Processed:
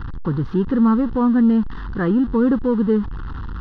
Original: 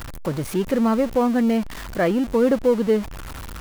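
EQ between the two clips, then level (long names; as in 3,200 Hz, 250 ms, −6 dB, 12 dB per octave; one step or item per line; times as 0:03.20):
head-to-tape spacing loss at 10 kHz 37 dB
high-shelf EQ 4,800 Hz −4.5 dB
phaser with its sweep stopped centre 2,300 Hz, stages 6
+7.5 dB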